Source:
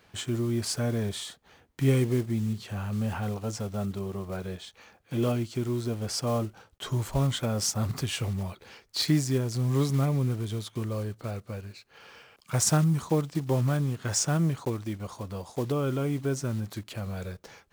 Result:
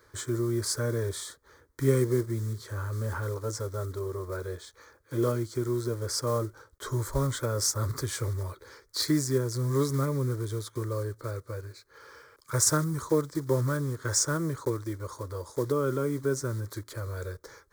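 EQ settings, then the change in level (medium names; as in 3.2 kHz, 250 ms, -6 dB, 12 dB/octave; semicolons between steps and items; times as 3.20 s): static phaser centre 740 Hz, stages 6; +3.5 dB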